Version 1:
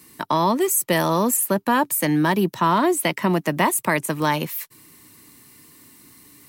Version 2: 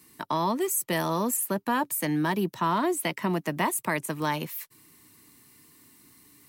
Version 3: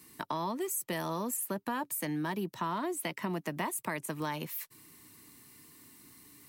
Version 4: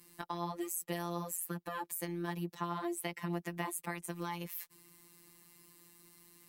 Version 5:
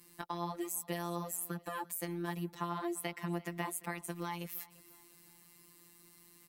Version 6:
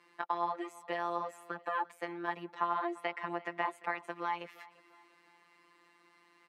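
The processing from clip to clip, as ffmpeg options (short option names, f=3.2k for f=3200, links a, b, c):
-af "bandreject=f=550:w=12,volume=-7dB"
-af "acompressor=threshold=-35dB:ratio=2.5"
-af "afftfilt=real='hypot(re,im)*cos(PI*b)':imag='0':win_size=1024:overlap=0.75,volume=-1dB"
-af "aecho=1:1:344|688|1032:0.0891|0.0365|0.015"
-af "highpass=590,lowpass=2k,volume=8dB"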